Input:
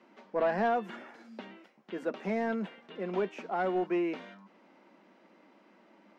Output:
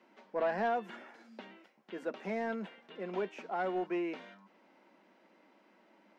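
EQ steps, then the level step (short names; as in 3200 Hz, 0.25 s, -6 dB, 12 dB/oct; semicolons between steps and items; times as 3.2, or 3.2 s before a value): low shelf 300 Hz -5.5 dB; notch 1200 Hz, Q 19; -2.5 dB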